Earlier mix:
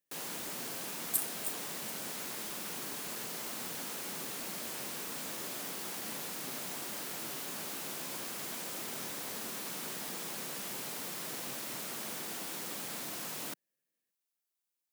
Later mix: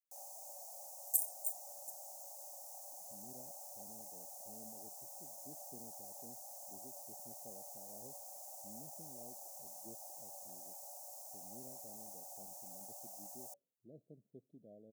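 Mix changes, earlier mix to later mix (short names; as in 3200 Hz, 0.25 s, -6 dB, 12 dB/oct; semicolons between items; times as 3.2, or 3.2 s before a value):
speech: entry +2.65 s; first sound: add rippled Chebyshev high-pass 550 Hz, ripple 9 dB; master: add elliptic band-stop 740–6200 Hz, stop band 70 dB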